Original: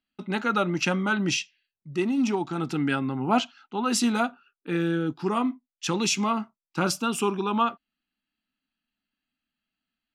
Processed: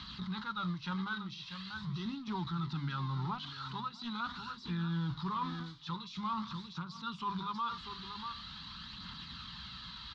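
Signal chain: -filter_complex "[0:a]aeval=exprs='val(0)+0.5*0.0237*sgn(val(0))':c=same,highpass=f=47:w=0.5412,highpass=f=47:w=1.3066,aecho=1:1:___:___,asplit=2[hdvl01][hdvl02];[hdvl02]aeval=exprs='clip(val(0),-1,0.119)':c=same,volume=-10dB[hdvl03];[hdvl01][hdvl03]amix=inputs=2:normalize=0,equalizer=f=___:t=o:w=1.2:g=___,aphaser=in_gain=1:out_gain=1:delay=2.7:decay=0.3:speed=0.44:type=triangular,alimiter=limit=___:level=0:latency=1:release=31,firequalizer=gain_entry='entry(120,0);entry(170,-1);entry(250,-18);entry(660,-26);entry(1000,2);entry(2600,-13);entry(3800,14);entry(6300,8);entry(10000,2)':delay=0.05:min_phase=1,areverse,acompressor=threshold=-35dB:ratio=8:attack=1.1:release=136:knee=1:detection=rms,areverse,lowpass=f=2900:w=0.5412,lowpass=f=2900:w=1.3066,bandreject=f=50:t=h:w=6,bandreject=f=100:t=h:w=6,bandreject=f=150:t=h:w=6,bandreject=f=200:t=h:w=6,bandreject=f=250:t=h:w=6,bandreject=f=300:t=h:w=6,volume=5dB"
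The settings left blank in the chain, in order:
640, 0.224, 1600, -6, -13dB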